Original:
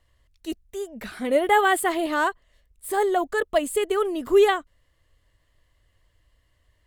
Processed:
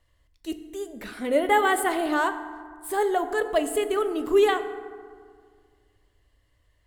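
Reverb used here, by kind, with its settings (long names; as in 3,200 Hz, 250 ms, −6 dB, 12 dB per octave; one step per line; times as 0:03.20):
feedback delay network reverb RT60 1.9 s, low-frequency decay 1.3×, high-frequency decay 0.45×, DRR 8.5 dB
level −2 dB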